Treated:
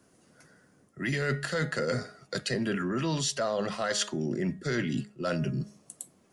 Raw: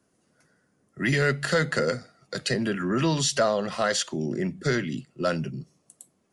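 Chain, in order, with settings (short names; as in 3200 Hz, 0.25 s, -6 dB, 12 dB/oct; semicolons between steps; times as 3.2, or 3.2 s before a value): de-hum 208.1 Hz, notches 9; reverse; compressor 6:1, threshold -34 dBFS, peak gain reduction 15 dB; reverse; gain +6.5 dB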